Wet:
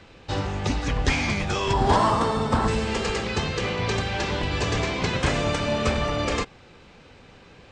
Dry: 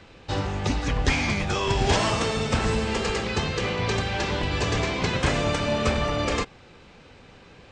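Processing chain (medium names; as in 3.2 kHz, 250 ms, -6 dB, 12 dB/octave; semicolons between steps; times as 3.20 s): 1.73–2.68 s: fifteen-band graphic EQ 250 Hz +4 dB, 1 kHz +10 dB, 2.5 kHz -10 dB, 6.3 kHz -9 dB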